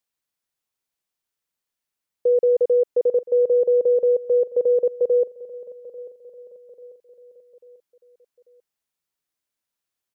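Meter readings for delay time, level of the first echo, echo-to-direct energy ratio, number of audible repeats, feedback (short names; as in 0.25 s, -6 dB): 0.842 s, -18.5 dB, -17.5 dB, 3, 47%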